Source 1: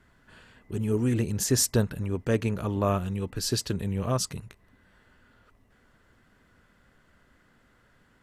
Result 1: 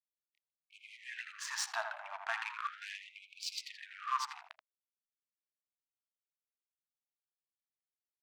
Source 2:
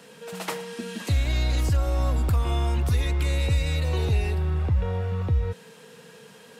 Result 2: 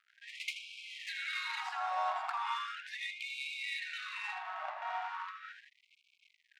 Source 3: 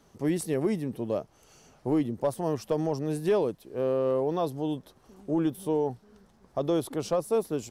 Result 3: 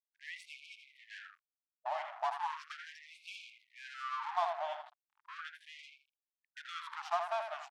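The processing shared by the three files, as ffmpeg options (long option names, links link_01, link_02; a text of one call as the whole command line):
ffmpeg -i in.wav -filter_complex "[0:a]highshelf=frequency=6300:gain=-12,asplit=2[link_01][link_02];[link_02]acompressor=threshold=-32dB:ratio=5,volume=0dB[link_03];[link_01][link_03]amix=inputs=2:normalize=0,asplit=2[link_04][link_05];[link_05]adelay=81,lowpass=frequency=4600:poles=1,volume=-6.5dB,asplit=2[link_06][link_07];[link_07]adelay=81,lowpass=frequency=4600:poles=1,volume=0.36,asplit=2[link_08][link_09];[link_09]adelay=81,lowpass=frequency=4600:poles=1,volume=0.36,asplit=2[link_10][link_11];[link_11]adelay=81,lowpass=frequency=4600:poles=1,volume=0.36[link_12];[link_04][link_06][link_08][link_10][link_12]amix=inputs=5:normalize=0,aeval=exprs='sgn(val(0))*max(abs(val(0))-0.0133,0)':channel_layout=same,equalizer=frequency=1100:width=0.52:gain=4.5,adynamicsmooth=sensitivity=3:basefreq=3200,afftfilt=real='re*gte(b*sr/1024,590*pow(2200/590,0.5+0.5*sin(2*PI*0.37*pts/sr)))':imag='im*gte(b*sr/1024,590*pow(2200/590,0.5+0.5*sin(2*PI*0.37*pts/sr)))':win_size=1024:overlap=0.75,volume=-3.5dB" out.wav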